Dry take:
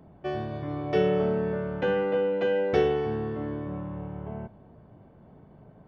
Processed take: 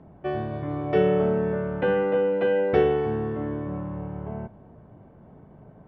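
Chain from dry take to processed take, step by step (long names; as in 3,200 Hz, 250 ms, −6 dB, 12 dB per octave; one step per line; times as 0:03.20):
low-pass filter 2,600 Hz 12 dB per octave
level +3 dB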